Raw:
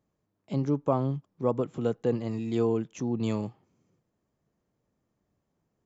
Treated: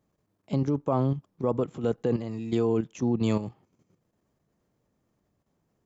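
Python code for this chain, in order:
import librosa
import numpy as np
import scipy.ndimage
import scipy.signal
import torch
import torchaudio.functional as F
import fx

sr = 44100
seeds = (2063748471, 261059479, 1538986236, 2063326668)

y = fx.level_steps(x, sr, step_db=10)
y = y * librosa.db_to_amplitude(6.0)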